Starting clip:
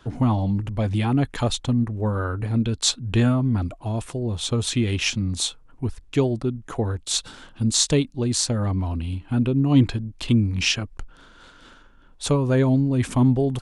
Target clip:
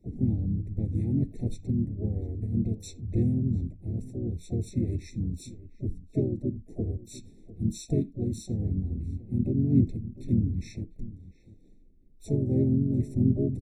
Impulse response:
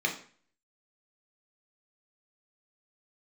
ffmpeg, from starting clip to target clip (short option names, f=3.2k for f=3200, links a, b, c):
-filter_complex "[0:a]firequalizer=gain_entry='entry(430,0);entry(660,-26);entry(8600,-9)':delay=0.05:min_phase=1,asplit=4[a][b][c][d];[b]asetrate=29433,aresample=44100,atempo=1.49831,volume=-8dB[e];[c]asetrate=37084,aresample=44100,atempo=1.18921,volume=-4dB[f];[d]asetrate=66075,aresample=44100,atempo=0.66742,volume=-16dB[g];[a][e][f][g]amix=inputs=4:normalize=0,asplit=2[h][i];[i]adelay=699.7,volume=-17dB,highshelf=f=4k:g=-15.7[j];[h][j]amix=inputs=2:normalize=0,asplit=2[k][l];[1:a]atrim=start_sample=2205,afade=t=out:st=0.14:d=0.01,atrim=end_sample=6615[m];[l][m]afir=irnorm=-1:irlink=0,volume=-21dB[n];[k][n]amix=inputs=2:normalize=0,afftfilt=real='re*eq(mod(floor(b*sr/1024/880),2),0)':imag='im*eq(mod(floor(b*sr/1024/880),2),0)':win_size=1024:overlap=0.75,volume=-8dB"